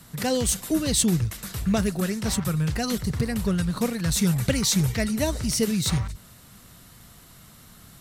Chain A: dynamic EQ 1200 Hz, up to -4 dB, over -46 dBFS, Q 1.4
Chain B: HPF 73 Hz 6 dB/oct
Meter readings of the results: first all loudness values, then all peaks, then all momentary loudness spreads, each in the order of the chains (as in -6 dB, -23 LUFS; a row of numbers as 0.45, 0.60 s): -24.5, -25.0 LUFS; -9.5, -9.5 dBFS; 6, 6 LU